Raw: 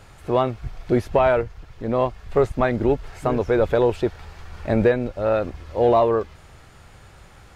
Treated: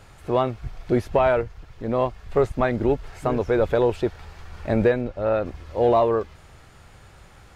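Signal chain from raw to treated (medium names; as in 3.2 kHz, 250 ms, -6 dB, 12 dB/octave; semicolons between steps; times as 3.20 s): 5.01–5.46 s: low-pass 3.5 kHz 6 dB/octave; trim -1.5 dB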